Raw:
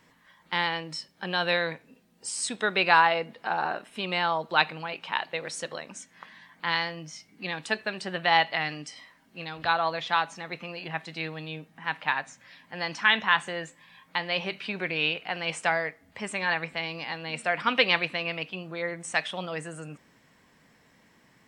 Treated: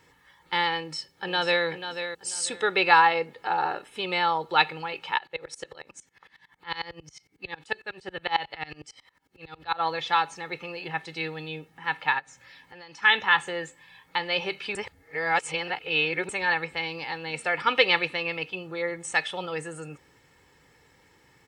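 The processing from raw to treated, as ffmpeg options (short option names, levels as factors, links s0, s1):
-filter_complex "[0:a]asplit=2[s0][s1];[s1]afade=t=in:st=0.78:d=0.01,afade=t=out:st=1.65:d=0.01,aecho=0:1:490|980|1470:0.354813|0.0887033|0.0221758[s2];[s0][s2]amix=inputs=2:normalize=0,asplit=3[s3][s4][s5];[s3]afade=t=out:st=5.17:d=0.02[s6];[s4]aeval=exprs='val(0)*pow(10,-25*if(lt(mod(-11*n/s,1),2*abs(-11)/1000),1-mod(-11*n/s,1)/(2*abs(-11)/1000),(mod(-11*n/s,1)-2*abs(-11)/1000)/(1-2*abs(-11)/1000))/20)':c=same,afade=t=in:st=5.17:d=0.02,afade=t=out:st=9.79:d=0.02[s7];[s5]afade=t=in:st=9.79:d=0.02[s8];[s6][s7][s8]amix=inputs=3:normalize=0,asplit=3[s9][s10][s11];[s9]afade=t=out:st=12.18:d=0.02[s12];[s10]acompressor=threshold=0.00501:ratio=4:attack=3.2:release=140:knee=1:detection=peak,afade=t=in:st=12.18:d=0.02,afade=t=out:st=13.02:d=0.02[s13];[s11]afade=t=in:st=13.02:d=0.02[s14];[s12][s13][s14]amix=inputs=3:normalize=0,asplit=3[s15][s16][s17];[s15]atrim=end=14.752[s18];[s16]atrim=start=14.748:end=16.292,asetpts=PTS-STARTPTS,areverse[s19];[s17]atrim=start=16.288[s20];[s18][s19]acrossfade=d=0.004:c1=hsin:c2=hsin[s21];[s21][s20]acrossfade=d=0.004:c1=hsin:c2=hsin,highpass=41,lowshelf=f=66:g=9,aecho=1:1:2.3:0.65"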